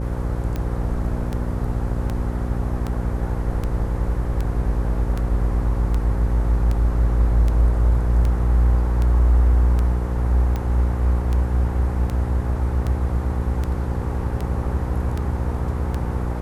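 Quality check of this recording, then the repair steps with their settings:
buzz 60 Hz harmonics 9 -25 dBFS
tick 78 rpm -14 dBFS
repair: de-click; de-hum 60 Hz, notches 9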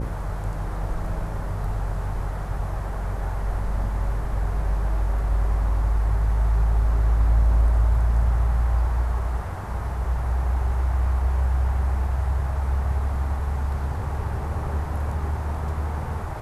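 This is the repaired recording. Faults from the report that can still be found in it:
nothing left

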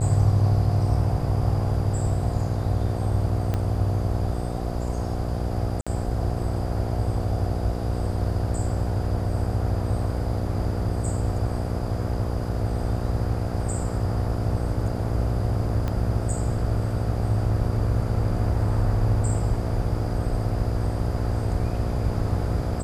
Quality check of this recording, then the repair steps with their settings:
buzz 60 Hz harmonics 12 -29 dBFS
3.54 s: pop -14 dBFS
5.81–5.87 s: dropout 56 ms
15.88 s: pop -16 dBFS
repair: de-click; de-hum 60 Hz, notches 12; interpolate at 5.81 s, 56 ms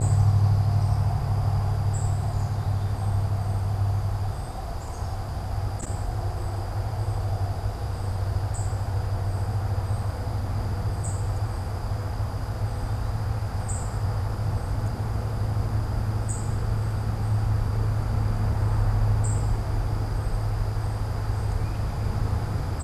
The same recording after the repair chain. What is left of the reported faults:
3.54 s: pop
15.88 s: pop

